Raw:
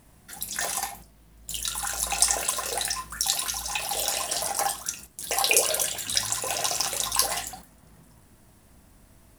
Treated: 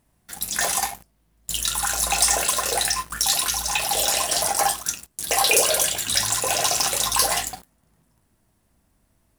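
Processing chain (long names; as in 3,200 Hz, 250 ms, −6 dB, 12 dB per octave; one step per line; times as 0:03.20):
leveller curve on the samples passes 3
level −4.5 dB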